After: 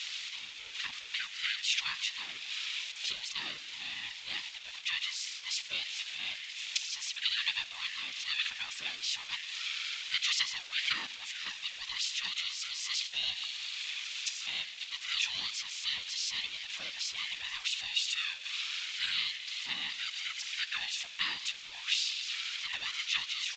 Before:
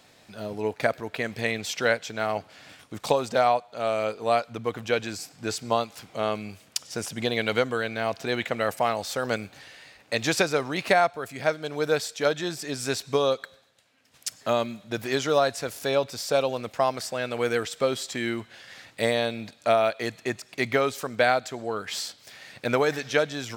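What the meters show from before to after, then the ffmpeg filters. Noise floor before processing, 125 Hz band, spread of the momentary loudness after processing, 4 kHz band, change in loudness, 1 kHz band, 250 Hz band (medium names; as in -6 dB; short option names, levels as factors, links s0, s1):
-57 dBFS, under -25 dB, 7 LU, +3.5 dB, -7.0 dB, -22.0 dB, under -30 dB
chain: -af "aeval=exprs='val(0)+0.5*0.0376*sgn(val(0))':c=same,afftfilt=real='hypot(re,im)*cos(2*PI*random(0))':imag='hypot(re,im)*sin(2*PI*random(1))':win_size=512:overlap=0.75,highpass=f=3000:t=q:w=4.5,aeval=exprs='val(0)*sin(2*PI*460*n/s)':c=same,aresample=16000,aresample=44100"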